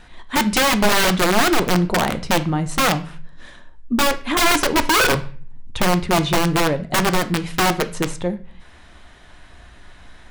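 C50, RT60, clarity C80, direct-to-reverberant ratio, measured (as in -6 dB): 16.0 dB, 0.40 s, 20.5 dB, 10.0 dB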